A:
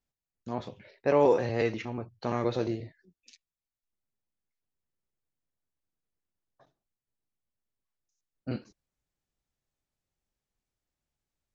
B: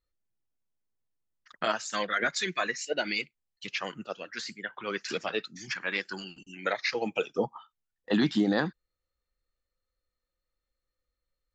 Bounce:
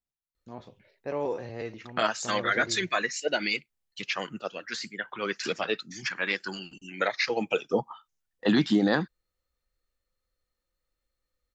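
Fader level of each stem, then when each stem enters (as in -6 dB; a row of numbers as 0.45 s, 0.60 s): -8.5 dB, +2.5 dB; 0.00 s, 0.35 s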